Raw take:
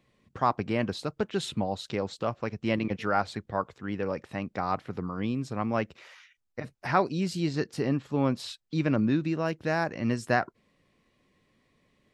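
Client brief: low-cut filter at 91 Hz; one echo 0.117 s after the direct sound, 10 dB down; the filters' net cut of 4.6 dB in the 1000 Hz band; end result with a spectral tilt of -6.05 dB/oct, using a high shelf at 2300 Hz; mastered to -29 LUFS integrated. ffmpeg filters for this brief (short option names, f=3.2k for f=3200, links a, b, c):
-af "highpass=91,equalizer=f=1k:t=o:g=-5.5,highshelf=f=2.3k:g=-4.5,aecho=1:1:117:0.316,volume=2.5dB"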